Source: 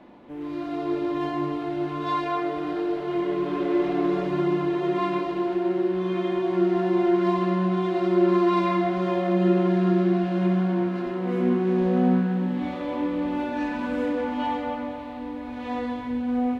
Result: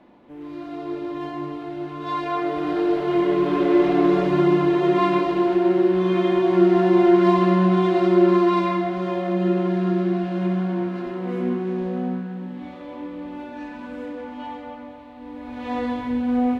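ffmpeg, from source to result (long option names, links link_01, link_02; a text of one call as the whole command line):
ffmpeg -i in.wav -af "volume=17dB,afade=type=in:start_time=1.98:duration=0.93:silence=0.354813,afade=type=out:start_time=7.85:duration=1.01:silence=0.473151,afade=type=out:start_time=11.25:duration=0.94:silence=0.473151,afade=type=in:start_time=15.16:duration=0.7:silence=0.281838" out.wav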